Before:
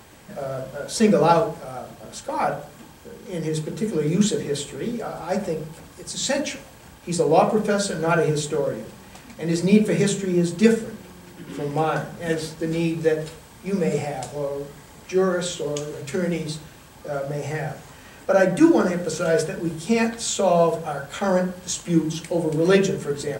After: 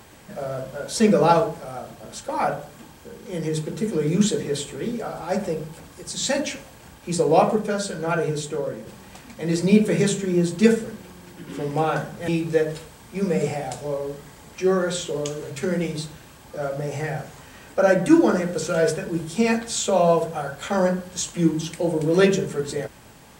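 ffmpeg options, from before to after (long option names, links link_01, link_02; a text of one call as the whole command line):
ffmpeg -i in.wav -filter_complex "[0:a]asplit=4[link_01][link_02][link_03][link_04];[link_01]atrim=end=7.562[link_05];[link_02]atrim=start=7.558:end=8.872,asetpts=PTS-STARTPTS,volume=-3.5dB[link_06];[link_03]atrim=start=8.868:end=12.282[link_07];[link_04]atrim=start=12.788[link_08];[link_05][link_06]acrossfade=duration=0.004:curve1=hsin:curve2=hsin[link_09];[link_09][link_07]acrossfade=duration=0.004:curve1=hsin:curve2=hsin[link_10];[link_10][link_08]acrossfade=duration=0.004:curve1=hsin:curve2=hsin" out.wav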